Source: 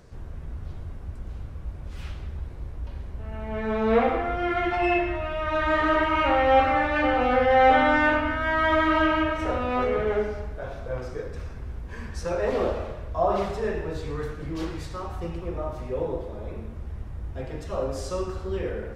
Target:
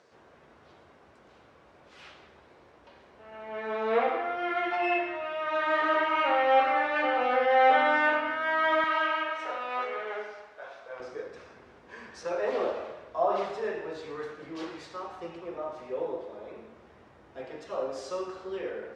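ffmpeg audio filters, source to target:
-af "asetnsamples=n=441:p=0,asendcmd='8.84 highpass f 790;11 highpass f 360',highpass=440,lowpass=5700,volume=0.75"

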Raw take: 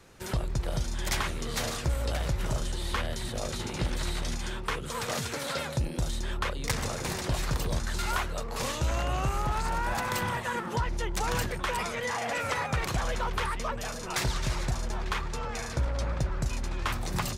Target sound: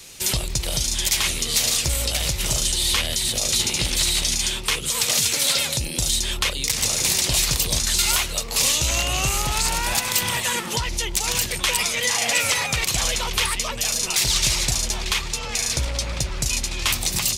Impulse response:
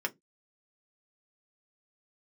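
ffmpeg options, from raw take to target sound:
-af "aexciter=amount=3.2:drive=8.9:freq=2200,alimiter=limit=0.266:level=0:latency=1:release=197,volume=1.5"

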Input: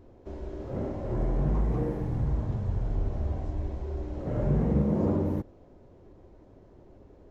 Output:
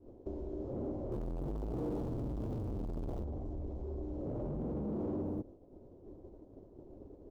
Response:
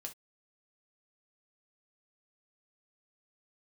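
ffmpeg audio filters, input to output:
-filter_complex "[0:a]asettb=1/sr,asplit=3[s0][s1][s2];[s0]atrim=end=1.124[s3];[s1]atrim=start=1.12:end=3.24,asetpts=PTS-STARTPTS,afade=t=in:d=0.004:c=qsin,afade=t=out:st=2.116:d=0.004:c=qsin,aeval=exprs='val(0)+0.5*0.0299*sgn(val(0))':c=same[s4];[s2]atrim=start=3.236[s5];[s3][s4]acrossfade=d=0.004:c1=hsin:c2=qsin[s6];[s6][s5]acrossfade=d=0.004:c1=qsin:c2=hsin,highshelf=f=2100:g=10,asoftclip=type=hard:threshold=0.0299,agate=range=0.0224:threshold=0.00631:ratio=3:detection=peak,acompressor=threshold=0.002:ratio=2.5,firequalizer=gain_entry='entry(170,0);entry(290,6);entry(1800,-20);entry(3100,-17)':delay=0.05:min_phase=1,volume=2.24"

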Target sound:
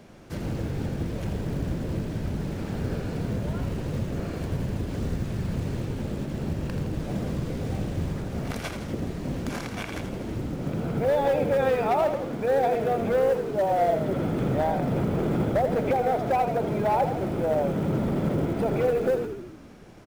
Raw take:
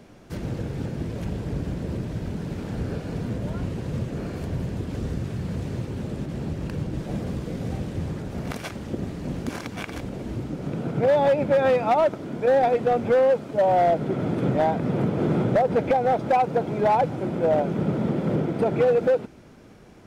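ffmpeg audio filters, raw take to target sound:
-filter_complex "[0:a]alimiter=limit=0.112:level=0:latency=1:release=13,bandreject=f=60:t=h:w=6,bandreject=f=120:t=h:w=6,bandreject=f=180:t=h:w=6,bandreject=f=240:t=h:w=6,bandreject=f=300:t=h:w=6,bandreject=f=360:t=h:w=6,bandreject=f=420:t=h:w=6,bandreject=f=480:t=h:w=6,acrusher=bits=8:mode=log:mix=0:aa=0.000001,asplit=2[s0][s1];[s1]asplit=8[s2][s3][s4][s5][s6][s7][s8][s9];[s2]adelay=82,afreqshift=-40,volume=0.398[s10];[s3]adelay=164,afreqshift=-80,volume=0.24[s11];[s4]adelay=246,afreqshift=-120,volume=0.143[s12];[s5]adelay=328,afreqshift=-160,volume=0.0861[s13];[s6]adelay=410,afreqshift=-200,volume=0.0519[s14];[s7]adelay=492,afreqshift=-240,volume=0.0309[s15];[s8]adelay=574,afreqshift=-280,volume=0.0186[s16];[s9]adelay=656,afreqshift=-320,volume=0.0111[s17];[s10][s11][s12][s13][s14][s15][s16][s17]amix=inputs=8:normalize=0[s18];[s0][s18]amix=inputs=2:normalize=0"

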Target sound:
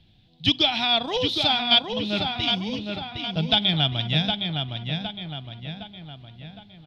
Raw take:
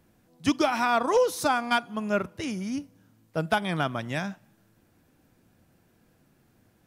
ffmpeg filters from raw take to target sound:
-filter_complex "[0:a]firequalizer=gain_entry='entry(130,0);entry(230,-10);entry(520,-16);entry(750,-8);entry(1100,-21);entry(3500,12);entry(6100,-18);entry(9300,-27)':delay=0.05:min_phase=1,asplit=2[s0][s1];[s1]adelay=762,lowpass=f=3900:p=1,volume=0.596,asplit=2[s2][s3];[s3]adelay=762,lowpass=f=3900:p=1,volume=0.51,asplit=2[s4][s5];[s5]adelay=762,lowpass=f=3900:p=1,volume=0.51,asplit=2[s6][s7];[s7]adelay=762,lowpass=f=3900:p=1,volume=0.51,asplit=2[s8][s9];[s9]adelay=762,lowpass=f=3900:p=1,volume=0.51,asplit=2[s10][s11];[s11]adelay=762,lowpass=f=3900:p=1,volume=0.51,asplit=2[s12][s13];[s13]adelay=762,lowpass=f=3900:p=1,volume=0.51[s14];[s0][s2][s4][s6][s8][s10][s12][s14]amix=inputs=8:normalize=0,volume=2.82"

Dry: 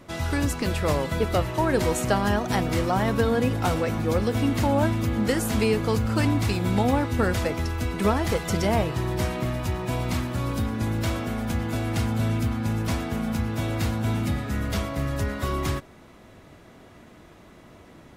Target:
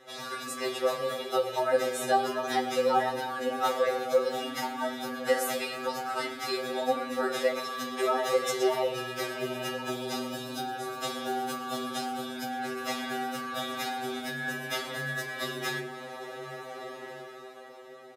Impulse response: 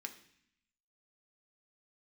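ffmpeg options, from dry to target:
-filter_complex "[0:a]dynaudnorm=f=280:g=9:m=3.98,asettb=1/sr,asplit=3[s0][s1][s2];[s0]atrim=end=9.814[s3];[s1]atrim=start=9.81:end=12.36,asetpts=PTS-STARTPTS,afade=t=in:d=0.004:c=qsin,afade=t=out:st=2.546:d=0.004:c=qsin,equalizer=f=2000:w=2.6:g=-9[s4];[s2]atrim=start=12.356[s5];[s3][s4]acrossfade=d=0.004:c1=hsin:c2=qsin[s6];[s6][s5]acrossfade=d=0.004:c1=qsin:c2=hsin,acompressor=threshold=0.0708:ratio=4,highpass=f=440:t=q:w=3.5,aecho=1:1:5.3:0.65,asplit=2[s7][s8];[s8]adelay=1399,volume=0.224,highshelf=f=4000:g=-31.5[s9];[s7][s9]amix=inputs=2:normalize=0[s10];[1:a]atrim=start_sample=2205,asetrate=31311,aresample=44100[s11];[s10][s11]afir=irnorm=-1:irlink=0,afftfilt=real='re*2.45*eq(mod(b,6),0)':imag='im*2.45*eq(mod(b,6),0)':win_size=2048:overlap=0.75"

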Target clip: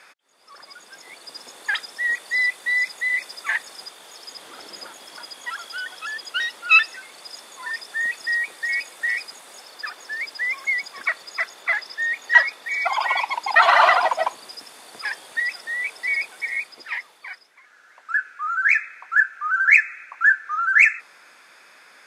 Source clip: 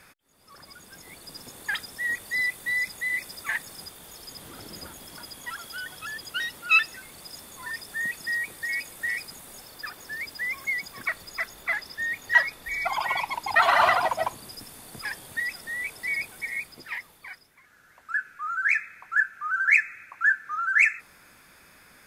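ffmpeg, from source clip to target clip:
-af "highpass=490,lowpass=7100,volume=1.88"

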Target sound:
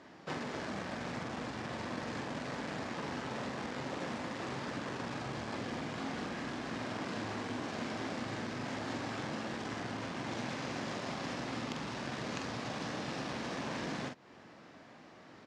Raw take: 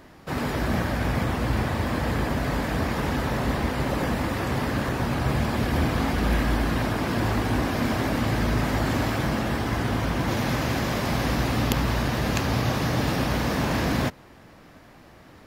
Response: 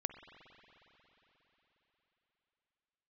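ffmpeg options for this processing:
-filter_complex "[0:a]asplit=2[s0][s1];[s1]acrusher=bits=3:mix=0:aa=0.000001,volume=0.501[s2];[s0][s2]amix=inputs=2:normalize=0,lowpass=f=7100:w=0.5412,lowpass=f=7100:w=1.3066,acompressor=threshold=0.0316:ratio=6,highpass=170,asplit=2[s3][s4];[s4]adelay=45,volume=0.531[s5];[s3][s5]amix=inputs=2:normalize=0,volume=0.531"

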